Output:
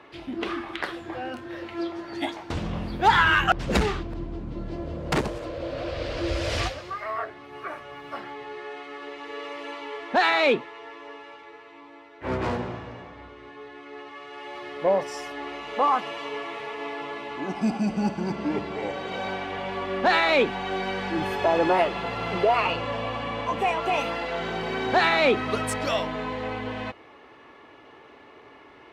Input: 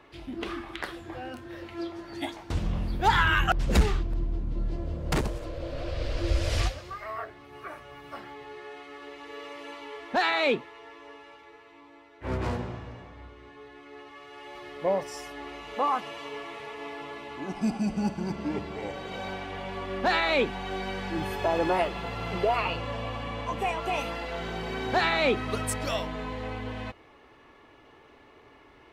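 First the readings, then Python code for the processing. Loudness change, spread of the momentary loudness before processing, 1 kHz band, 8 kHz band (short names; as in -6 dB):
+3.5 dB, 19 LU, +5.0 dB, 0.0 dB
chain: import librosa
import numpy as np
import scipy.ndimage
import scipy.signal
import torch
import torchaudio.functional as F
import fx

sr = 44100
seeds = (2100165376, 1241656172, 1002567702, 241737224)

p1 = fx.highpass(x, sr, hz=200.0, slope=6)
p2 = fx.high_shelf(p1, sr, hz=7600.0, db=-12.0)
p3 = 10.0 ** (-29.5 / 20.0) * np.tanh(p2 / 10.0 ** (-29.5 / 20.0))
p4 = p2 + F.gain(torch.from_numpy(p3), -10.5).numpy()
y = F.gain(torch.from_numpy(p4), 4.0).numpy()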